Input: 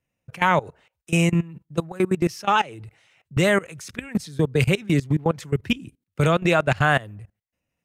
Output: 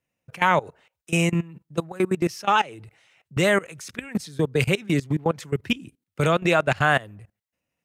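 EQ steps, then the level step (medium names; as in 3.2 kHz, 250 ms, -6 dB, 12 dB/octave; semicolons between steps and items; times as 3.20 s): bass shelf 120 Hz -9 dB; 0.0 dB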